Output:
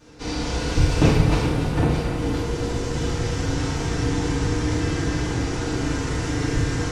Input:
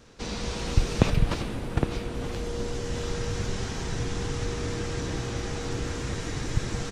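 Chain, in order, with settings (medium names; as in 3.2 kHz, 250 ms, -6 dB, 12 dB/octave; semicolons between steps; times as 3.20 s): two-band feedback delay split 510 Hz, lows 428 ms, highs 282 ms, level -9 dB; FDN reverb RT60 1.1 s, low-frequency decay 0.9×, high-frequency decay 0.55×, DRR -9 dB; trim -3.5 dB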